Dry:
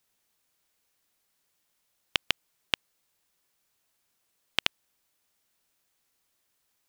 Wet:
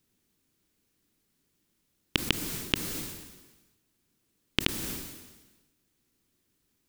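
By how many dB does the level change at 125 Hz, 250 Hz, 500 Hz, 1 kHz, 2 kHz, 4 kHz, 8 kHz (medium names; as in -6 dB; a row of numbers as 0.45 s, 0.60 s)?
+14.0 dB, +15.0 dB, +6.5 dB, -1.5 dB, -1.0 dB, -1.0 dB, +9.0 dB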